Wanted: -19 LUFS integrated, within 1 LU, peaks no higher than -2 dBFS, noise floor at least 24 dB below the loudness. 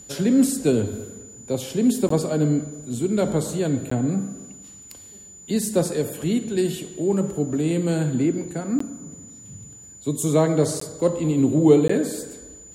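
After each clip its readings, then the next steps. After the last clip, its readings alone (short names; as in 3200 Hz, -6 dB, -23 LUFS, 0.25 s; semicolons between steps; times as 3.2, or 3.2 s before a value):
dropouts 5; longest dropout 14 ms; steady tone 7000 Hz; tone level -42 dBFS; loudness -22.5 LUFS; peak -3.0 dBFS; loudness target -19.0 LUFS
-> interpolate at 2.09/3.9/8.79/10.8/11.88, 14 ms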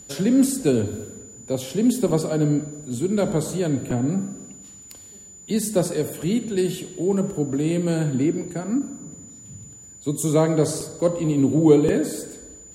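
dropouts 0; steady tone 7000 Hz; tone level -42 dBFS
-> notch 7000 Hz, Q 30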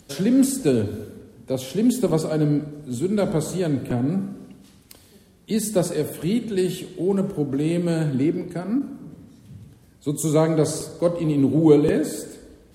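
steady tone none; loudness -22.5 LUFS; peak -3.0 dBFS; loudness target -19.0 LUFS
-> gain +3.5 dB; limiter -2 dBFS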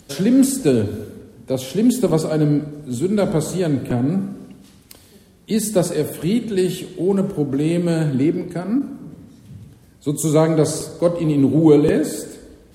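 loudness -19.0 LUFS; peak -2.0 dBFS; noise floor -49 dBFS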